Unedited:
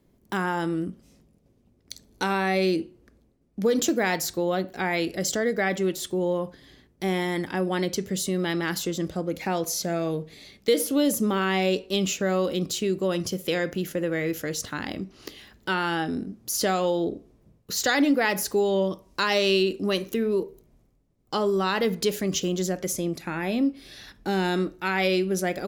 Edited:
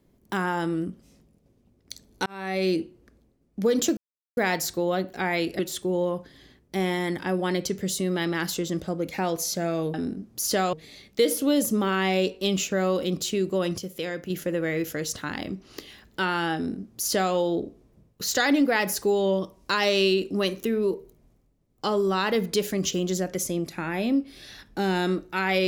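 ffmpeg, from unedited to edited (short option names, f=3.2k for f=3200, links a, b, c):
-filter_complex "[0:a]asplit=8[a][b][c][d][e][f][g][h];[a]atrim=end=2.26,asetpts=PTS-STARTPTS,afade=t=out:st=2.256:d=0.004:c=hsin[i];[b]atrim=start=2.26:end=3.97,asetpts=PTS-STARTPTS,afade=t=in:d=0.46,afade=t=out:st=1.706:d=0.004:c=hsin,apad=pad_dur=0.4[j];[c]atrim=start=3.97:end=5.192,asetpts=PTS-STARTPTS,afade=t=in:d=0.004:c=hsin[k];[d]atrim=start=5.868:end=10.222[l];[e]atrim=start=16.038:end=16.832[m];[f]atrim=start=10.218:end=13.272[n];[g]atrim=start=13.268:end=13.792,asetpts=PTS-STARTPTS,volume=-5.5dB[o];[h]atrim=start=13.788[p];[i][j][k]concat=n=3:v=0:a=1[q];[q][l]acrossfade=d=0.004:c1=hsin:c2=hsin[r];[r][m]acrossfade=d=0.004:c1=hsin:c2=hsin[s];[s][n]acrossfade=d=0.004:c1=hsin:c2=hsin[t];[t][o]acrossfade=d=0.004:c1=hsin:c2=hsin[u];[u][p]acrossfade=d=0.004:c1=hsin:c2=hsin"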